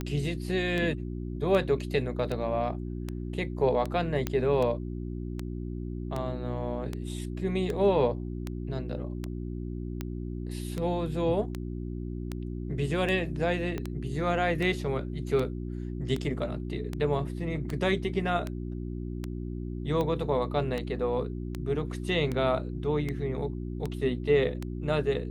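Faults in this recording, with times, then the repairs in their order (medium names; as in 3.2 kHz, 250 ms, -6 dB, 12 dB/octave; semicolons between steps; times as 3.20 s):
hum 60 Hz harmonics 6 -35 dBFS
tick 78 rpm -19 dBFS
4.27 s: pop -14 dBFS
13.78 s: pop -20 dBFS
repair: de-click; de-hum 60 Hz, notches 6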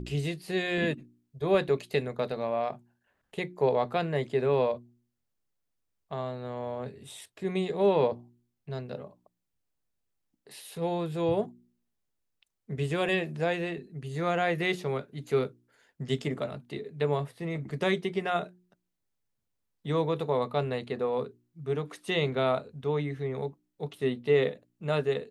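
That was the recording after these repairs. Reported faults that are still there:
13.78 s: pop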